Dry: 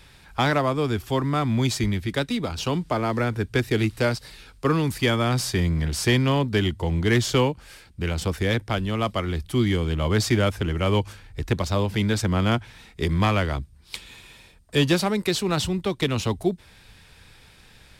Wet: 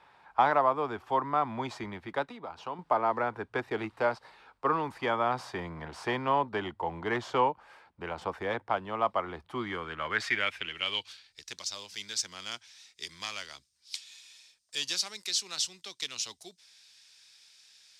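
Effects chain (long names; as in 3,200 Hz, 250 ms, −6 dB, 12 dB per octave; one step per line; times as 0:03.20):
0:02.24–0:02.79: downward compressor 2 to 1, threshold −35 dBFS, peak gain reduction 8.5 dB
band-pass filter sweep 910 Hz → 5,700 Hz, 0:09.47–0:11.51
level +4 dB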